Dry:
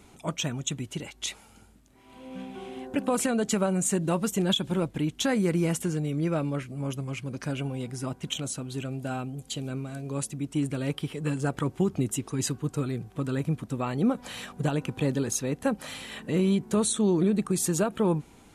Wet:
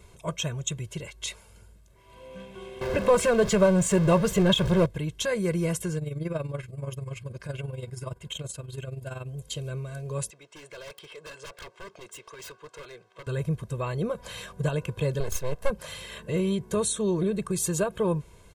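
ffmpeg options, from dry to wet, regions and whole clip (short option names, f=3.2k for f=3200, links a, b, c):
-filter_complex "[0:a]asettb=1/sr,asplit=3[a][b][c];[a]atrim=end=2.814[d];[b]atrim=start=2.81:end=4.86,asetpts=PTS-STARTPTS,afade=t=in:d=0.004:c=qsin,afade=t=out:st=2.046:d=0.004:c=qsin,aeval=exprs='val(0)+0.5*0.0299*sgn(val(0))':c=same,aemphasis=mode=reproduction:type=50kf,acontrast=28[e];[c]atrim=start=4.856[f];[d][e]acrossfade=d=0.004:c1=hsin:c2=qsin[g];[g][f]acrossfade=d=0.004:c1=qsin:c2=hsin,asettb=1/sr,asplit=3[h][i][j];[h]atrim=end=5.984[k];[i]atrim=start=5.98:end=9.27,asetpts=PTS-STARTPTS,afade=t=in:d=0.004:c=qsin,afade=t=out:st=3.286:d=0.004:c=qsin,bandreject=f=5.9k:w=9.2,tremolo=f=21:d=0.71[l];[j]atrim=start=9.266[m];[k][l]acrossfade=d=0.004:c1=hsin:c2=qsin[n];[n][m]acrossfade=d=0.004:c1=qsin:c2=hsin,asettb=1/sr,asplit=3[o][p][q];[o]atrim=end=10.304[r];[p]atrim=start=10.3:end=13.27,asetpts=PTS-STARTPTS,afade=t=in:d=0.004:c=qsin,afade=t=out:st=2.966:d=0.004:c=qsin,highpass=630,lowpass=5.1k,aeval=exprs='0.015*(abs(mod(val(0)/0.015+3,4)-2)-1)':c=same[s];[q]atrim=start=13.266[t];[r][s]acrossfade=d=0.004:c1=hsin:c2=qsin[u];[u][t]acrossfade=d=0.004:c1=qsin:c2=hsin,asettb=1/sr,asplit=3[v][w][x];[v]atrim=end=15.204[y];[w]atrim=start=15.2:end=15.7,asetpts=PTS-STARTPTS,afade=t=in:d=0.004:c=qsin,afade=t=out:st=0.496:d=0.004:c=qsin,equalizer=f=720:w=2.4:g=9,aeval=exprs='max(val(0),0)':c=same[z];[x]atrim=start=15.696[aa];[y][z]acrossfade=d=0.004:c1=hsin:c2=qsin[ab];[ab][aa]acrossfade=d=0.004:c1=qsin:c2=hsin,lowshelf=f=120:g=6,aecho=1:1:1.9:0.87,volume=-3dB"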